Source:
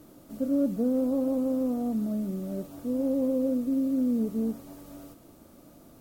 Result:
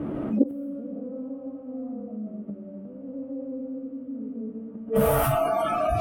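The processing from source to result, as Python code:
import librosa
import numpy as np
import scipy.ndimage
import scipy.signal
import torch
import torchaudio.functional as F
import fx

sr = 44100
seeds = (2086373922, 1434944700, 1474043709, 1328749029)

y = fx.band_shelf(x, sr, hz=5300.0, db=-13.5, octaves=1.2)
y = fx.echo_feedback(y, sr, ms=116, feedback_pct=49, wet_db=-13)
y = fx.rev_freeverb(y, sr, rt60_s=1.0, hf_ratio=0.45, predelay_ms=110, drr_db=-5.5)
y = fx.rider(y, sr, range_db=3, speed_s=2.0)
y = fx.gate_flip(y, sr, shuts_db=-20.0, range_db=-40)
y = fx.highpass(y, sr, hz=140.0, slope=6)
y = fx.noise_reduce_blind(y, sr, reduce_db=27)
y = fx.env_lowpass(y, sr, base_hz=2300.0, full_db=-44.0)
y = fx.low_shelf(y, sr, hz=450.0, db=9.5)
y = fx.doubler(y, sr, ms=14.0, db=-7.5)
y = fx.env_flatten(y, sr, amount_pct=70)
y = F.gain(torch.from_numpy(y), 7.5).numpy()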